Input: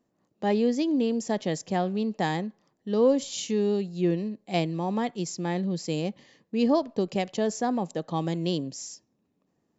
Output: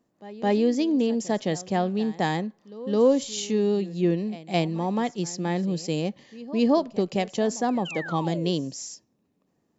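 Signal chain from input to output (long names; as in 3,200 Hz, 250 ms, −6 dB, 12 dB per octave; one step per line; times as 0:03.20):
sound drawn into the spectrogram fall, 0:07.85–0:08.51, 370–3,200 Hz −38 dBFS
echo ahead of the sound 214 ms −18.5 dB
level +2 dB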